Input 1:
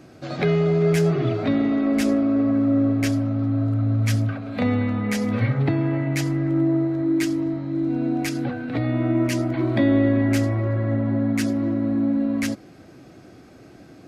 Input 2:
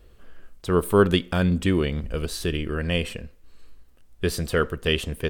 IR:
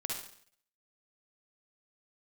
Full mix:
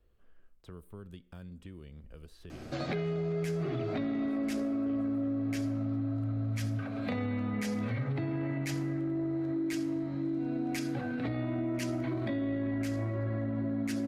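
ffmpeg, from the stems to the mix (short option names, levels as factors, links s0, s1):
-filter_complex "[0:a]bandreject=f=48.92:t=h:w=4,bandreject=f=97.84:t=h:w=4,bandreject=f=146.76:t=h:w=4,bandreject=f=195.68:t=h:w=4,bandreject=f=244.6:t=h:w=4,bandreject=f=293.52:t=h:w=4,bandreject=f=342.44:t=h:w=4,bandreject=f=391.36:t=h:w=4,bandreject=f=440.28:t=h:w=4,bandreject=f=489.2:t=h:w=4,bandreject=f=538.12:t=h:w=4,bandreject=f=587.04:t=h:w=4,bandreject=f=635.96:t=h:w=4,bandreject=f=684.88:t=h:w=4,bandreject=f=733.8:t=h:w=4,bandreject=f=782.72:t=h:w=4,bandreject=f=831.64:t=h:w=4,bandreject=f=880.56:t=h:w=4,bandreject=f=929.48:t=h:w=4,bandreject=f=978.4:t=h:w=4,bandreject=f=1027.32:t=h:w=4,bandreject=f=1076.24:t=h:w=4,bandreject=f=1125.16:t=h:w=4,bandreject=f=1174.08:t=h:w=4,bandreject=f=1223:t=h:w=4,bandreject=f=1271.92:t=h:w=4,bandreject=f=1320.84:t=h:w=4,bandreject=f=1369.76:t=h:w=4,bandreject=f=1418.68:t=h:w=4,bandreject=f=1467.6:t=h:w=4,bandreject=f=1516.52:t=h:w=4,bandreject=f=1565.44:t=h:w=4,bandreject=f=1614.36:t=h:w=4,alimiter=limit=0.141:level=0:latency=1:release=16,adelay=2500,volume=1,asplit=2[s0][s1];[s1]volume=0.224[s2];[1:a]equalizer=f=7600:w=0.38:g=-6,acrossover=split=200|4900[s3][s4][s5];[s3]acompressor=threshold=0.0316:ratio=4[s6];[s4]acompressor=threshold=0.0141:ratio=4[s7];[s5]acompressor=threshold=0.00224:ratio=4[s8];[s6][s7][s8]amix=inputs=3:normalize=0,volume=0.15[s9];[2:a]atrim=start_sample=2205[s10];[s2][s10]afir=irnorm=-1:irlink=0[s11];[s0][s9][s11]amix=inputs=3:normalize=0,acompressor=threshold=0.02:ratio=3"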